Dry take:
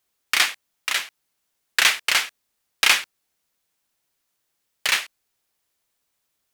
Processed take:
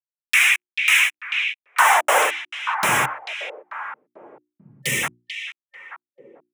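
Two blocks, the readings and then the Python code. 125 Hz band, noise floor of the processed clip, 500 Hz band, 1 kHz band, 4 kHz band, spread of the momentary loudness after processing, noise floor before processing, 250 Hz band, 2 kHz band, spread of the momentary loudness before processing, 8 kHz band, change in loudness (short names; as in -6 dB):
n/a, under -85 dBFS, +14.0 dB, +11.5 dB, -3.0 dB, 17 LU, -76 dBFS, +10.5 dB, +4.5 dB, 16 LU, +0.5 dB, +1.5 dB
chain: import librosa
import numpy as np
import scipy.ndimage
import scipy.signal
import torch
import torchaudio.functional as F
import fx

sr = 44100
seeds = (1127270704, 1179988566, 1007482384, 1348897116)

y = fx.chorus_voices(x, sr, voices=4, hz=0.43, base_ms=13, depth_ms=2.1, mix_pct=55)
y = fx.peak_eq(y, sr, hz=940.0, db=12.5, octaves=1.9)
y = fx.fuzz(y, sr, gain_db=41.0, gate_db=-41.0)
y = fx.spec_box(y, sr, start_s=4.67, length_s=0.36, low_hz=560.0, high_hz=1800.0, gain_db=-22)
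y = fx.quant_dither(y, sr, seeds[0], bits=12, dither='none')
y = fx.filter_sweep_highpass(y, sr, from_hz=2400.0, to_hz=130.0, start_s=1.28, end_s=2.99, q=4.0)
y = fx.env_phaser(y, sr, low_hz=150.0, high_hz=4500.0, full_db=-21.5)
y = fx.hum_notches(y, sr, base_hz=60, count=6)
y = fx.echo_stepped(y, sr, ms=441, hz=3100.0, octaves=-1.4, feedback_pct=70, wet_db=-4.5)
y = fx.dynamic_eq(y, sr, hz=610.0, q=0.87, threshold_db=-25.0, ratio=4.0, max_db=3)
y = y * librosa.db_to_amplitude(-3.0)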